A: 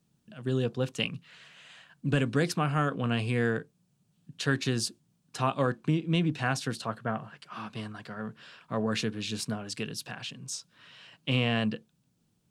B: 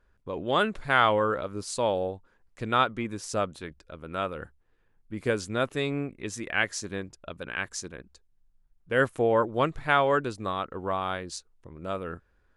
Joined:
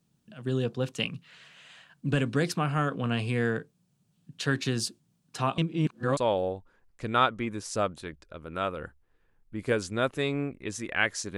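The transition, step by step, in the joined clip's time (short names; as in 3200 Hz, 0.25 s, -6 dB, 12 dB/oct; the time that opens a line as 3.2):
A
5.58–6.17 reverse
6.17 switch to B from 1.75 s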